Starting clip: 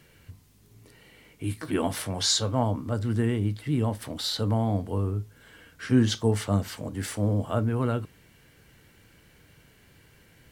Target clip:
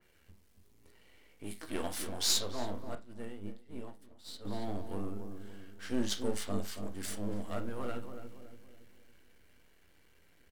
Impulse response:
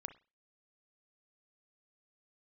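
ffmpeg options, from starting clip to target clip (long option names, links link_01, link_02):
-filter_complex "[0:a]aeval=exprs='if(lt(val(0),0),0.251*val(0),val(0))':channel_layout=same,equalizer=frequency=130:width_type=o:width=0.67:gain=-14,asplit=2[link_01][link_02];[link_02]adelay=282,lowpass=frequency=970:poles=1,volume=-7dB,asplit=2[link_03][link_04];[link_04]adelay=282,lowpass=frequency=970:poles=1,volume=0.48,asplit=2[link_05][link_06];[link_06]adelay=282,lowpass=frequency=970:poles=1,volume=0.48,asplit=2[link_07][link_08];[link_08]adelay=282,lowpass=frequency=970:poles=1,volume=0.48,asplit=2[link_09][link_10];[link_10]adelay=282,lowpass=frequency=970:poles=1,volume=0.48,asplit=2[link_11][link_12];[link_12]adelay=282,lowpass=frequency=970:poles=1,volume=0.48[link_13];[link_01][link_03][link_05][link_07][link_09][link_11][link_13]amix=inputs=7:normalize=0,asettb=1/sr,asplit=3[link_14][link_15][link_16];[link_14]atrim=end=2.954[link_17];[link_15]atrim=start=2.95:end=4.45,asetpts=PTS-STARTPTS,afade=type=in:duration=0.004:curve=qsin,afade=type=out:start_time=1.496:duration=0.004:curve=qsin,agate=range=-33dB:threshold=-21dB:ratio=3:detection=peak[link_18];[link_16]atrim=start=4.446[link_19];[link_17][link_18]acrossfade=duration=0.004:curve1=hsin:curve2=qsin[link_20];[link_20][link_19]acrossfade=duration=0.004:curve1=qsin:curve2=hsin[link_21];[1:a]atrim=start_sample=2205,asetrate=57330,aresample=44100[link_22];[link_21][link_22]afir=irnorm=-1:irlink=0,adynamicequalizer=threshold=0.001:dfrequency=2900:dqfactor=0.7:tfrequency=2900:tqfactor=0.7:attack=5:release=100:ratio=0.375:range=3:mode=boostabove:tftype=highshelf"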